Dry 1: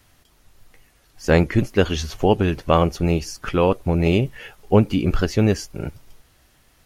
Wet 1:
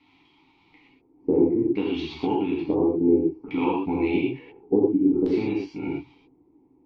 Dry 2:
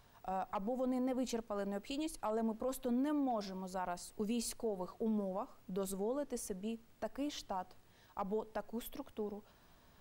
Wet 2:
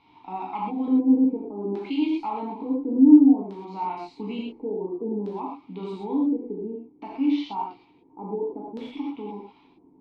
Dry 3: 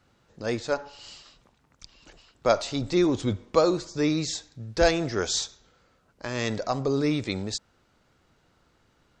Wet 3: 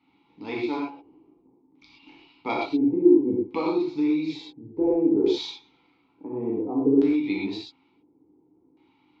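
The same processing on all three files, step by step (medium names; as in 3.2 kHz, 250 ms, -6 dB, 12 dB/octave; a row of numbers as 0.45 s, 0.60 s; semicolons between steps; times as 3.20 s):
vowel filter u; dynamic bell 490 Hz, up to +6 dB, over -44 dBFS, Q 1.1; compression 6:1, threshold -34 dBFS; LFO low-pass square 0.57 Hz 450–3900 Hz; peaking EQ 210 Hz -3.5 dB 0.59 oct; gated-style reverb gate 150 ms flat, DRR -4.5 dB; normalise loudness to -24 LUFS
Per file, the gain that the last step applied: +9.0 dB, +17.5 dB, +9.5 dB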